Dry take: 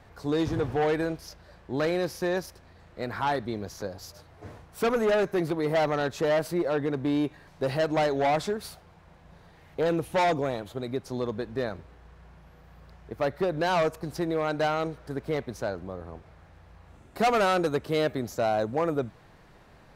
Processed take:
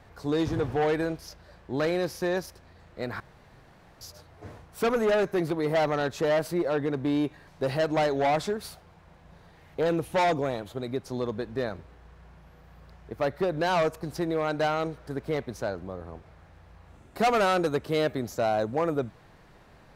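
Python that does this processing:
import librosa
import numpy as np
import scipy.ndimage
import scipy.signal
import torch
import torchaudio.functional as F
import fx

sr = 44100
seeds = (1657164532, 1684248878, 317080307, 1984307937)

y = fx.edit(x, sr, fx.room_tone_fill(start_s=3.2, length_s=0.81), tone=tone)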